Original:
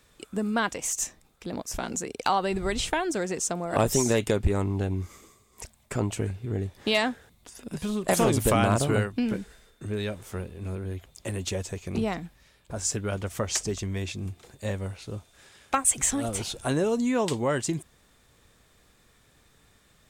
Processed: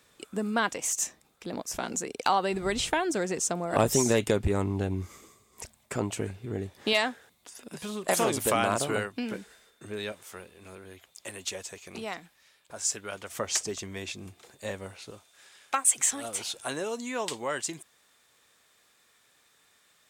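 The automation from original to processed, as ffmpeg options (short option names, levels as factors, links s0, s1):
-af "asetnsamples=n=441:p=0,asendcmd='2.66 highpass f 99;5.78 highpass f 210;6.93 highpass f 500;10.12 highpass f 1100;13.29 highpass f 450;15.11 highpass f 990',highpass=f=210:p=1"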